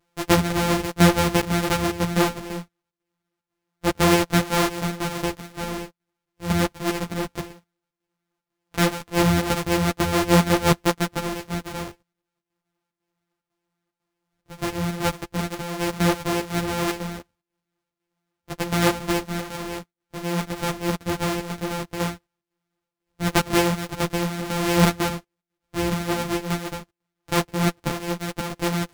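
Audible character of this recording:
a buzz of ramps at a fixed pitch in blocks of 256 samples
chopped level 2 Hz, depth 60%, duty 80%
a shimmering, thickened sound

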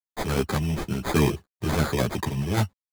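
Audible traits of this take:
a quantiser's noise floor 12 bits, dither none
sample-and-hold tremolo
aliases and images of a low sample rate 2,800 Hz, jitter 0%
a shimmering, thickened sound

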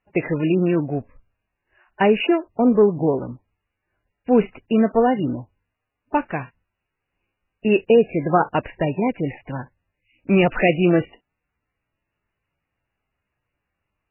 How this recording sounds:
a quantiser's noise floor 12 bits, dither triangular
MP3

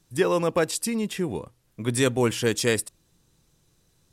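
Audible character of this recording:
background noise floor −66 dBFS
spectral slope −4.5 dB per octave

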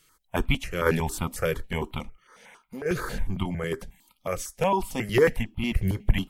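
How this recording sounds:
sample-and-hold tremolo
notches that jump at a steady rate 11 Hz 230–1,700 Hz

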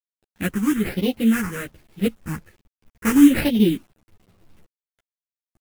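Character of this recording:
aliases and images of a low sample rate 3,400 Hz, jitter 20%
phaser sweep stages 4, 1.2 Hz, lowest notch 630–1,300 Hz
a quantiser's noise floor 10 bits, dither none
a shimmering, thickened sound

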